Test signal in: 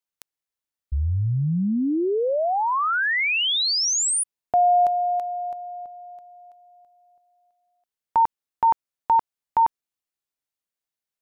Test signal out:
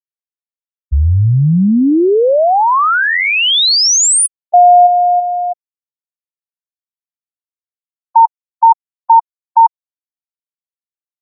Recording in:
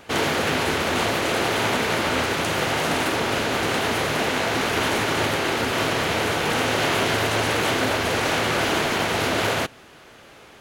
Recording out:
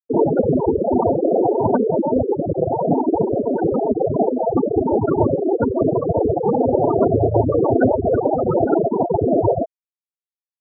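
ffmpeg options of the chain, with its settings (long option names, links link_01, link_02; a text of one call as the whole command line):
ffmpeg -i in.wav -filter_complex "[0:a]acrossover=split=2000[link_01][link_02];[link_02]adelay=30[link_03];[link_01][link_03]amix=inputs=2:normalize=0,acontrast=82,afftfilt=real='re*gte(hypot(re,im),0.562)':imag='im*gte(hypot(re,im),0.562)':win_size=1024:overlap=0.75,volume=5.5dB" out.wav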